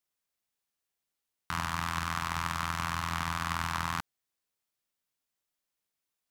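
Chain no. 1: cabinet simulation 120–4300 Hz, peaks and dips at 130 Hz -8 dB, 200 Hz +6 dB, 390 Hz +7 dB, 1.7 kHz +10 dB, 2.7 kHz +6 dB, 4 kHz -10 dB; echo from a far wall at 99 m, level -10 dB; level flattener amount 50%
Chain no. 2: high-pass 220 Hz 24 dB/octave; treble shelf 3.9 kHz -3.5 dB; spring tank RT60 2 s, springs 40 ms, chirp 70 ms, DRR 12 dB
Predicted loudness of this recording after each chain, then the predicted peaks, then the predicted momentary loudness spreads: -29.5 LUFS, -34.0 LUFS; -11.5 dBFS, -16.0 dBFS; 6 LU, 5 LU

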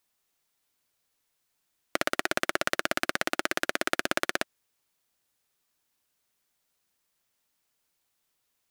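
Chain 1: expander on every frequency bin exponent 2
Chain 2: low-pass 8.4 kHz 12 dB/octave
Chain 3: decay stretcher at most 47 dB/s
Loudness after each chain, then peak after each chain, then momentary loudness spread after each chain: -34.0 LUFS, -30.0 LUFS, -29.5 LUFS; -7.0 dBFS, -3.5 dBFS, -3.5 dBFS; 4 LU, 4 LU, 9 LU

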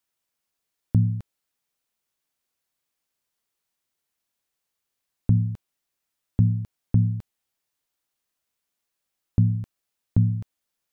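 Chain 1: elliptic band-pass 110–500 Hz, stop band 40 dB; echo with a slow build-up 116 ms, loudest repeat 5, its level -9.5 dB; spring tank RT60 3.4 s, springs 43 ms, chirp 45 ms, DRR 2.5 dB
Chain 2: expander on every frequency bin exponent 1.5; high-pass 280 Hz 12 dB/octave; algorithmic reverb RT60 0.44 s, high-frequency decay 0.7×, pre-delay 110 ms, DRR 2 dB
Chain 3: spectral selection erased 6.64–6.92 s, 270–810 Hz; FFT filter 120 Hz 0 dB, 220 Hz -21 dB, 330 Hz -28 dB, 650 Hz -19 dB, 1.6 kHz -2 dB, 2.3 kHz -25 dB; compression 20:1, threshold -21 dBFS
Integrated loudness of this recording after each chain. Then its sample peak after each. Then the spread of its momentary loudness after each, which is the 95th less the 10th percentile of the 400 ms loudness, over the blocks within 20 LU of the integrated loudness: -26.0 LUFS, -38.5 LUFS, -31.0 LUFS; -8.5 dBFS, -20.0 dBFS, -14.5 dBFS; 15 LU, 15 LU, 11 LU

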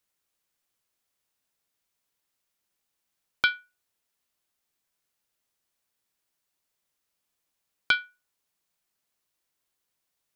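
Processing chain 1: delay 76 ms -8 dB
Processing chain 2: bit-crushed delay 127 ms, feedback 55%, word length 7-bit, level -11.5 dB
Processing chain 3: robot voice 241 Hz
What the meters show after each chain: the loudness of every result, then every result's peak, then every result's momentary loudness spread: -27.0 LUFS, -28.0 LUFS, -28.5 LUFS; -7.5 dBFS, -7.5 dBFS, -5.5 dBFS; 9 LU, 18 LU, 15 LU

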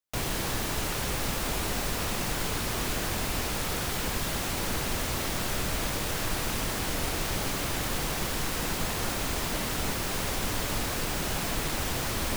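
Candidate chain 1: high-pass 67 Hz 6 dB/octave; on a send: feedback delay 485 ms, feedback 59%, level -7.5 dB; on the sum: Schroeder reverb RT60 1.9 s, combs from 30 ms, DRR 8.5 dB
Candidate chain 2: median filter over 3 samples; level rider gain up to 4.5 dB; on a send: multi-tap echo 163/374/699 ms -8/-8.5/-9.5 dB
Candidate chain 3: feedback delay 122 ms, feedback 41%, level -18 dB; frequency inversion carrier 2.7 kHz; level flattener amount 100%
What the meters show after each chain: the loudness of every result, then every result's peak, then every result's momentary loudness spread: -28.5 LUFS, -25.0 LUFS, -22.5 LUFS; -16.5 dBFS, -11.0 dBFS, -11.5 dBFS; 0 LU, 0 LU, 0 LU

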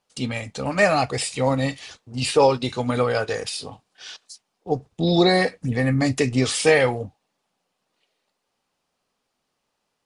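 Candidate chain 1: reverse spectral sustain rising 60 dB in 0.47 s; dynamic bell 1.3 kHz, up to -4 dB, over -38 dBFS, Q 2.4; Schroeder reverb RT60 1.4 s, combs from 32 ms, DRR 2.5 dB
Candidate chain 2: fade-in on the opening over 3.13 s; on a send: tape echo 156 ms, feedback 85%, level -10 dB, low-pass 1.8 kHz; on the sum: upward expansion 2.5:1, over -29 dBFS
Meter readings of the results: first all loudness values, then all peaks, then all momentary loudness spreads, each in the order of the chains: -19.0 LUFS, -26.5 LUFS; -2.0 dBFS, -4.5 dBFS; 18 LU, 19 LU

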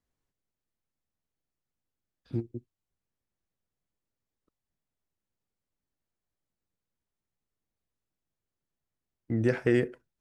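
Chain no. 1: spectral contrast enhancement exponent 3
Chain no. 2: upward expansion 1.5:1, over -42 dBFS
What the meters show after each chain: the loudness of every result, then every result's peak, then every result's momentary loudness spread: -30.5 LUFS, -31.0 LUFS; -15.5 dBFS, -13.0 dBFS; 15 LU, 14 LU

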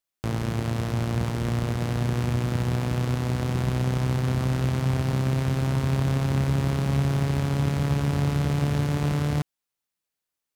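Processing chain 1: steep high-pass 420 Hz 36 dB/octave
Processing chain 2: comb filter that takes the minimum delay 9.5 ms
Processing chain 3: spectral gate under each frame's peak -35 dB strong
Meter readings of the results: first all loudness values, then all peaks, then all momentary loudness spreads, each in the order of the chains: -35.5 LUFS, -29.5 LUFS, -25.5 LUFS; -17.5 dBFS, -16.0 dBFS, -12.5 dBFS; 1 LU, 3 LU, 3 LU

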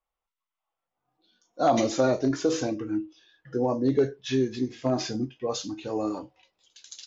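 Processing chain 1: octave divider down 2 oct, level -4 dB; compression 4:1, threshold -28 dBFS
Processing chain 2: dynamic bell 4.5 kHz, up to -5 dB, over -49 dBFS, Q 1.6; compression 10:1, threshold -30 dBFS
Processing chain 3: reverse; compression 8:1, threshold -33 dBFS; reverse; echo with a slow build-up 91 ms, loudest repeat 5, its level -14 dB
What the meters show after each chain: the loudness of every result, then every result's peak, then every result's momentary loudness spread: -33.0 LUFS, -36.0 LUFS, -36.5 LUFS; -15.5 dBFS, -18.5 dBFS, -22.5 dBFS; 9 LU, 14 LU, 5 LU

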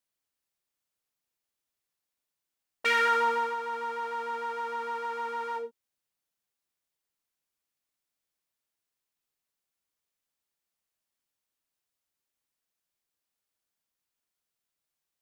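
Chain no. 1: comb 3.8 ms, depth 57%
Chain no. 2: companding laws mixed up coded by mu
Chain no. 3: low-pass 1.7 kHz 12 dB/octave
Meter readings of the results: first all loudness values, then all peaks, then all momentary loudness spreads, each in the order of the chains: -29.5 LUFS, -29.0 LUFS, -31.5 LUFS; -12.5 dBFS, -13.0 dBFS, -16.0 dBFS; 13 LU, 9 LU, 10 LU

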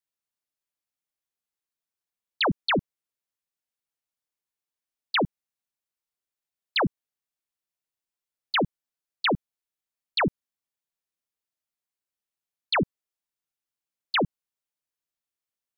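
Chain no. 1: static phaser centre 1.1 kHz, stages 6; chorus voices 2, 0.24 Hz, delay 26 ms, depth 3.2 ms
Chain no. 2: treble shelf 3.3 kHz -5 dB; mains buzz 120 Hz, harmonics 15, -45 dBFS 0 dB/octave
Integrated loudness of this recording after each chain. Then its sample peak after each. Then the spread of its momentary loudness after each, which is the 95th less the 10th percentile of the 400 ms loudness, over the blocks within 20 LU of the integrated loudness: -34.0 LUFS, -28.5 LUFS; -18.0 dBFS, -17.0 dBFS; 7 LU, 17 LU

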